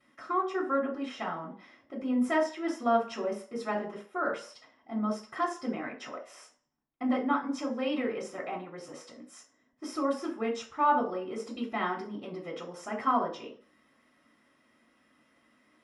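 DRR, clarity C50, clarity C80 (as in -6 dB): -14.0 dB, 9.0 dB, 14.0 dB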